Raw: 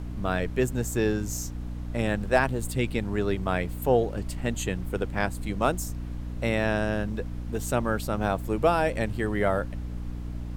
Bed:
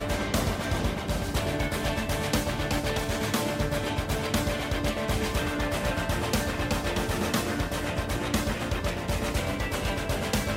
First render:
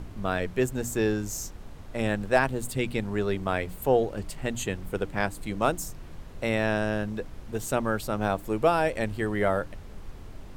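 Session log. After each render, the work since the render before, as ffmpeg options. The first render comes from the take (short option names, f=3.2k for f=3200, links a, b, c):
-af "bandreject=f=60:t=h:w=6,bandreject=f=120:t=h:w=6,bandreject=f=180:t=h:w=6,bandreject=f=240:t=h:w=6,bandreject=f=300:t=h:w=6"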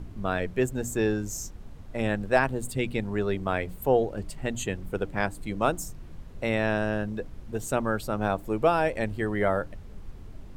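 -af "afftdn=nr=6:nf=-43"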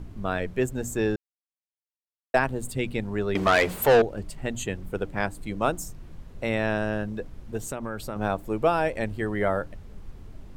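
-filter_complex "[0:a]asettb=1/sr,asplit=3[a][b][c];[a]atrim=end=3.354[d];[b]atrim=start=3.35:end=4.02,asetpts=PTS-STARTPTS,afade=t=in:d=0.004:c=qsin,afade=t=out:st=0.666:d=0.004:c=qsin,asplit=2[e][f];[f]highpass=f=720:p=1,volume=25dB,asoftclip=type=tanh:threshold=-10dB[g];[e][g]amix=inputs=2:normalize=0,lowpass=f=6.2k:p=1,volume=-6dB[h];[c]atrim=start=4.016[i];[d][h]acrossfade=d=0.004:c1=hsin:c2=qsin[j];[j][i]acrossfade=d=0.004:c1=qsin:c2=hsin,asettb=1/sr,asplit=3[k][l][m];[k]atrim=end=7.604[n];[l]atrim=start=7.6:end=8.16,asetpts=PTS-STARTPTS,afade=t=in:d=0.004:c=qsin,afade=t=out:st=0.556:d=0.004:c=qsin,acompressor=threshold=-27dB:ratio=6:attack=3.2:release=140:knee=1:detection=peak[o];[m]atrim=start=8.156[p];[n][o]acrossfade=d=0.004:c1=hsin:c2=qsin[q];[q][p]acrossfade=d=0.004:c1=qsin:c2=hsin,asplit=3[r][s][t];[r]atrim=end=1.16,asetpts=PTS-STARTPTS,afade=t=out:st=1.156:d=0.004:c=hsin[u];[s]atrim=start=1.16:end=2.34,asetpts=PTS-STARTPTS,volume=0[v];[t]atrim=start=2.34,asetpts=PTS-STARTPTS,afade=t=in:d=0.004:c=hsin[w];[u][v][w]concat=n=3:v=0:a=1"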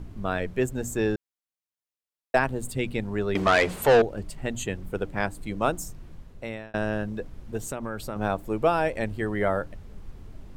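-filter_complex "[0:a]asettb=1/sr,asplit=3[a][b][c];[a]atrim=end=3.424[d];[b]atrim=start=3.42:end=4,asetpts=PTS-STARTPTS,afade=t=in:d=0.004:c=qsin,afade=t=out:st=0.576:d=0.004:c=qsin,lowpass=10k[e];[c]atrim=start=3.996[f];[d][e]acrossfade=d=0.004:c1=hsin:c2=qsin[g];[g][f]acrossfade=d=0.004:c1=qsin:c2=hsin,asplit=2[h][i];[h]atrim=end=6.74,asetpts=PTS-STARTPTS,afade=t=out:st=5.83:d=0.91:c=qsin[j];[i]atrim=start=6.74,asetpts=PTS-STARTPTS,afade=t=in:d=0.004:c=hsin[k];[j][k]concat=n=2:v=0:a=1"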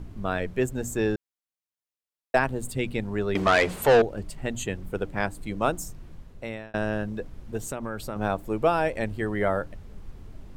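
-af anull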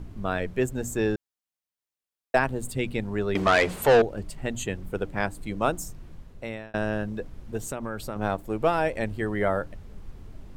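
-filter_complex "[0:a]asettb=1/sr,asplit=3[a][b][c];[a]atrim=end=8.124[d];[b]atrim=start=8.12:end=8.78,asetpts=PTS-STARTPTS,afade=t=in:d=0.004:c=qsin,afade=t=out:st=0.656:d=0.004:c=qsin,aeval=exprs='if(lt(val(0),0),0.708*val(0),val(0))':c=same[e];[c]atrim=start=8.776[f];[d][e]acrossfade=d=0.004:c1=hsin:c2=qsin[g];[g][f]acrossfade=d=0.004:c1=qsin:c2=hsin"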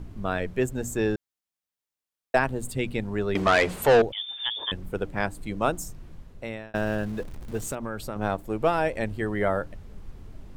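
-filter_complex "[0:a]asettb=1/sr,asplit=3[a][b][c];[a]atrim=end=4.124[d];[b]atrim=start=4.12:end=4.72,asetpts=PTS-STARTPTS,afade=t=in:d=0.004:c=qsin,afade=t=out:st=0.596:d=0.004:c=qsin,lowpass=f=3.1k:t=q:w=0.5098,lowpass=f=3.1k:t=q:w=0.6013,lowpass=f=3.1k:t=q:w=0.9,lowpass=f=3.1k:t=q:w=2.563,afreqshift=-3600[e];[c]atrim=start=4.716[f];[d][e]acrossfade=d=0.004:c1=hsin:c2=qsin[g];[g][f]acrossfade=d=0.004:c1=qsin:c2=hsin,asettb=1/sr,asplit=3[h][i][j];[h]atrim=end=6.754[k];[i]atrim=start=6.75:end=7.75,asetpts=PTS-STARTPTS,afade=t=in:d=0.004:c=qsin,afade=t=out:st=0.996:d=0.004:c=qsin,aeval=exprs='val(0)+0.5*0.01*sgn(val(0))':c=same[l];[j]atrim=start=7.746[m];[k][l]acrossfade=d=0.004:c1=hsin:c2=qsin[n];[n][m]acrossfade=d=0.004:c1=qsin:c2=hsin"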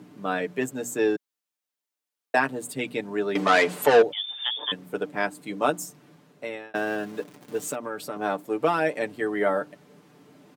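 -af "highpass=f=190:w=0.5412,highpass=f=190:w=1.3066,aecho=1:1:6.8:0.65"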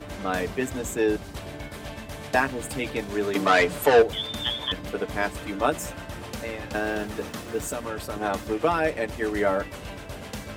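-filter_complex "[1:a]volume=-9dB[a];[0:a][a]amix=inputs=2:normalize=0"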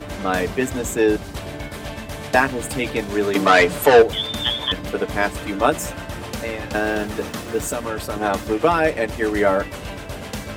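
-af "volume=6dB,alimiter=limit=-1dB:level=0:latency=1"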